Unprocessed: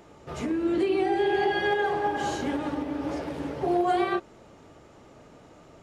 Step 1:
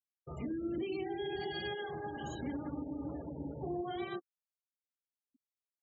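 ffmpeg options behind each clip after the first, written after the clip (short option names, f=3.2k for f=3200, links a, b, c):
-filter_complex "[0:a]afftfilt=real='re*gte(hypot(re,im),0.0282)':imag='im*gte(hypot(re,im),0.0282)':win_size=1024:overlap=0.75,equalizer=f=4.1k:t=o:w=1.5:g=2,acrossover=split=250|3000[a][b][c];[b]acompressor=threshold=-49dB:ratio=2[d];[a][d][c]amix=inputs=3:normalize=0,volume=-4dB"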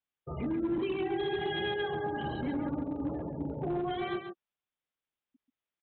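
-af "aresample=8000,volume=34dB,asoftclip=hard,volume=-34dB,aresample=44100,aecho=1:1:136:0.422,volume=6dB"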